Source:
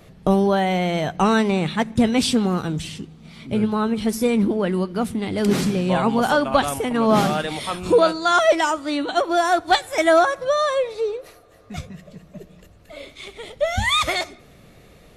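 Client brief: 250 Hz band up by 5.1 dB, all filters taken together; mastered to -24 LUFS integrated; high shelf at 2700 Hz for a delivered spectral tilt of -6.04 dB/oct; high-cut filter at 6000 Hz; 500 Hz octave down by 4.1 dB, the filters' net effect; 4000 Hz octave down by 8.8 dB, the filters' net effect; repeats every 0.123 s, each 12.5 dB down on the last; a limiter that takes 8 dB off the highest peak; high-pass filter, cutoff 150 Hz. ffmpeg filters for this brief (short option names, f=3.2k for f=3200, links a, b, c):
-af "highpass=150,lowpass=6k,equalizer=f=250:t=o:g=9,equalizer=f=500:t=o:g=-7.5,highshelf=f=2.7k:g=-8.5,equalizer=f=4k:t=o:g=-3.5,alimiter=limit=-11dB:level=0:latency=1,aecho=1:1:123|246|369:0.237|0.0569|0.0137,volume=-3.5dB"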